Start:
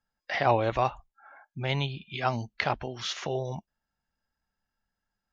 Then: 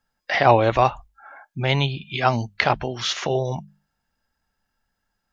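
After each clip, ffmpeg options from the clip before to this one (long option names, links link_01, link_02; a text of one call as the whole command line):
ffmpeg -i in.wav -af "bandreject=frequency=50:width_type=h:width=6,bandreject=frequency=100:width_type=h:width=6,bandreject=frequency=150:width_type=h:width=6,bandreject=frequency=200:width_type=h:width=6,volume=8.5dB" out.wav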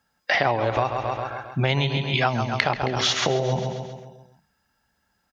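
ffmpeg -i in.wav -filter_complex "[0:a]highpass=61,asplit=2[link_01][link_02];[link_02]aecho=0:1:134|268|402|536|670|804:0.335|0.181|0.0977|0.0527|0.0285|0.0154[link_03];[link_01][link_03]amix=inputs=2:normalize=0,acompressor=threshold=-24dB:ratio=12,volume=6dB" out.wav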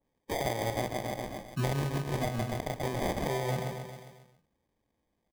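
ffmpeg -i in.wav -filter_complex "[0:a]acrossover=split=160[link_01][link_02];[link_02]alimiter=limit=-12dB:level=0:latency=1:release=232[link_03];[link_01][link_03]amix=inputs=2:normalize=0,acrusher=samples=32:mix=1:aa=0.000001,adynamicequalizer=threshold=0.0126:dfrequency=1900:dqfactor=0.7:tfrequency=1900:tqfactor=0.7:attack=5:release=100:ratio=0.375:range=1.5:mode=cutabove:tftype=highshelf,volume=-7.5dB" out.wav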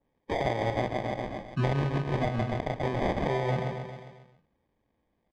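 ffmpeg -i in.wav -af "lowpass=3100,volume=3.5dB" out.wav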